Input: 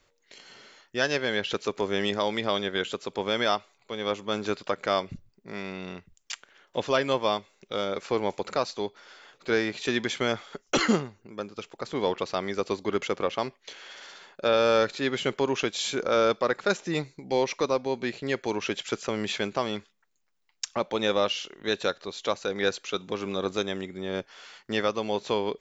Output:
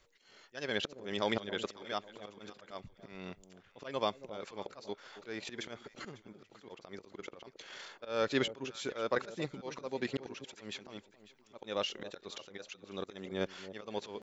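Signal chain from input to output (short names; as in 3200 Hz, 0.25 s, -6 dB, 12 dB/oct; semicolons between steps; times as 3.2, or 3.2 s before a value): auto swell 0.665 s; tempo 1.8×; echo with dull and thin repeats by turns 0.274 s, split 820 Hz, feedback 56%, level -13 dB; gain -1 dB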